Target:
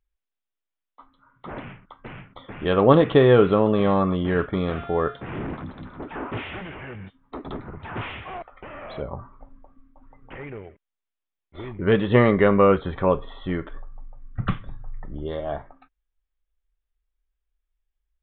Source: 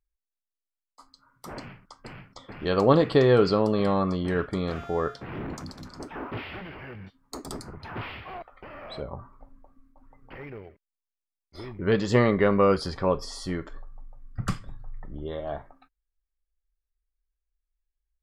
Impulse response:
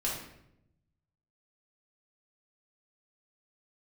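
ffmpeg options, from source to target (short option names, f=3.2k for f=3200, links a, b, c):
-af "aresample=8000,aresample=44100,volume=4dB"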